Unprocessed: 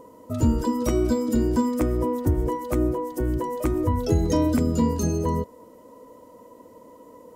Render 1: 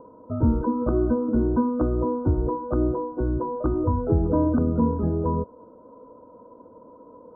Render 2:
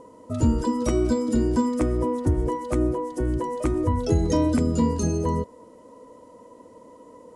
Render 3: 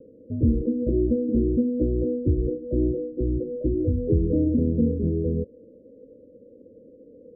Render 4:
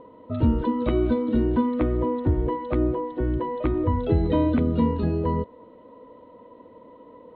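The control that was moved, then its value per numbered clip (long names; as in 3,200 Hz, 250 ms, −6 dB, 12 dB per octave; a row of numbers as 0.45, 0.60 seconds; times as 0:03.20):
Butterworth low-pass, frequency: 1,500, 11,000, 560, 4,000 Hertz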